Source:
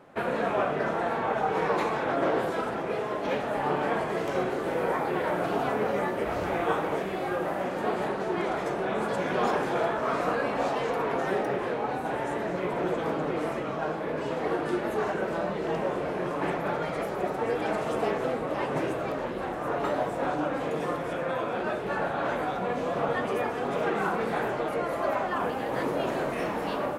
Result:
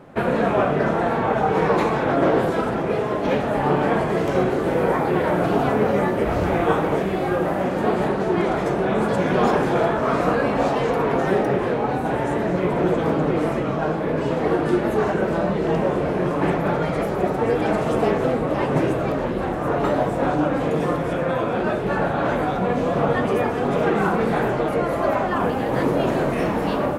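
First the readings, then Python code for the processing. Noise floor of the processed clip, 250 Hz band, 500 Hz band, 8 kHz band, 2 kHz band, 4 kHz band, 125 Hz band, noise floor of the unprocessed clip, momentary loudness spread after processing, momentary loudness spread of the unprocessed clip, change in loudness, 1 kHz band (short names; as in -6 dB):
-24 dBFS, +10.5 dB, +8.0 dB, n/a, +5.5 dB, +5.0 dB, +13.0 dB, -33 dBFS, 3 LU, 4 LU, +8.0 dB, +6.0 dB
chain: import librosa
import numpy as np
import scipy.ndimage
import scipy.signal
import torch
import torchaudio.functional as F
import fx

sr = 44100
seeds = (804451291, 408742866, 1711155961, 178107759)

y = fx.low_shelf(x, sr, hz=290.0, db=10.5)
y = F.gain(torch.from_numpy(y), 5.0).numpy()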